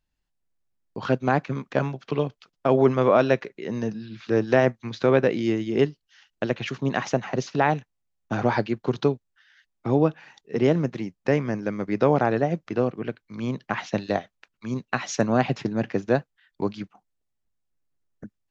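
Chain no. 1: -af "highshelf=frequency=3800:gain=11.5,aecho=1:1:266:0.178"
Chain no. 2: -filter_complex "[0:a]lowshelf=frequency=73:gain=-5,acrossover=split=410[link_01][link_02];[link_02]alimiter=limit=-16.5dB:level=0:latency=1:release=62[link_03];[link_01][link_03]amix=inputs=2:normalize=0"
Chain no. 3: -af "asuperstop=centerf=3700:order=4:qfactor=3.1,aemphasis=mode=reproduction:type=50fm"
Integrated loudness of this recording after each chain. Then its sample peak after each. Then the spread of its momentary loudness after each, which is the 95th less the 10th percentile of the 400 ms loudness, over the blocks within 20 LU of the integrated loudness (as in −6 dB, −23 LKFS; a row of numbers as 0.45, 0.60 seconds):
−24.5, −26.5, −24.5 LKFS; −4.5, −7.5, −5.5 dBFS; 14, 10, 12 LU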